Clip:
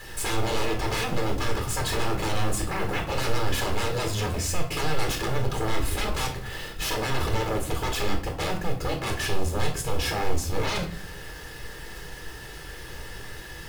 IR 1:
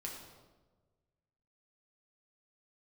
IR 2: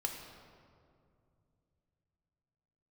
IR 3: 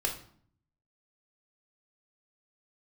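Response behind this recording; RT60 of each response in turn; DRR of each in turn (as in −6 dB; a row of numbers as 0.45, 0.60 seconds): 3; 1.3, 2.5, 0.55 seconds; −2.5, 2.5, 1.5 decibels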